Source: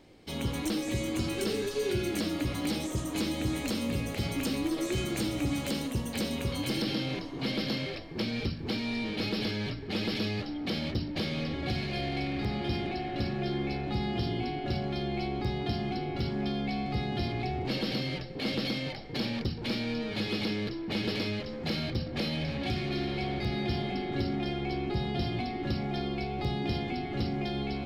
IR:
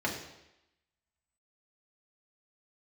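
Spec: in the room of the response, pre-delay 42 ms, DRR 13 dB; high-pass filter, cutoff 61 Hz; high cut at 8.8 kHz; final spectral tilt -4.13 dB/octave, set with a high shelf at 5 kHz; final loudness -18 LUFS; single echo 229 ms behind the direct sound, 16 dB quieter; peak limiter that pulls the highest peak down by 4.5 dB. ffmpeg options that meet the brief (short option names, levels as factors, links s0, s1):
-filter_complex "[0:a]highpass=61,lowpass=8800,highshelf=f=5000:g=7.5,alimiter=limit=0.0708:level=0:latency=1,aecho=1:1:229:0.158,asplit=2[s0][s1];[1:a]atrim=start_sample=2205,adelay=42[s2];[s1][s2]afir=irnorm=-1:irlink=0,volume=0.0891[s3];[s0][s3]amix=inputs=2:normalize=0,volume=5.31"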